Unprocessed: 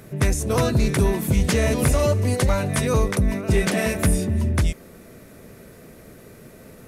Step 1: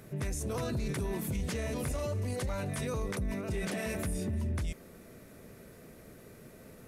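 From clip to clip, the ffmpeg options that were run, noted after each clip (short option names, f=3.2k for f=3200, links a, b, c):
-af "alimiter=limit=-19.5dB:level=0:latency=1:release=28,volume=-7.5dB"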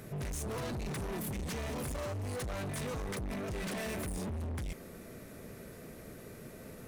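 -af "asoftclip=type=hard:threshold=-39.5dB,volume=3.5dB"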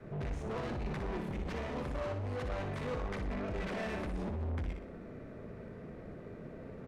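-af "adynamicequalizer=threshold=0.00316:dfrequency=130:dqfactor=0.76:tfrequency=130:tqfactor=0.76:attack=5:release=100:ratio=0.375:range=2.5:mode=cutabove:tftype=bell,adynamicsmooth=sensitivity=5.5:basefreq=1.7k,aecho=1:1:60|120|180|240|300:0.473|0.194|0.0795|0.0326|0.0134,volume=1.5dB"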